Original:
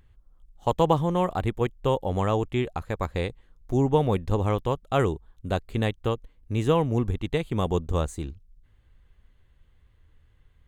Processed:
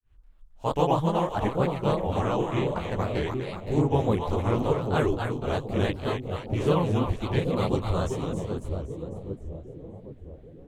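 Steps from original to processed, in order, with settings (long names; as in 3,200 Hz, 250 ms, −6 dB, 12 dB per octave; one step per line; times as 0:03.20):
echo with a time of its own for lows and highs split 620 Hz, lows 778 ms, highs 263 ms, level −5 dB
granular cloud 254 ms, grains 30 per second, spray 26 ms, pitch spread up and down by 3 semitones
level +5.5 dB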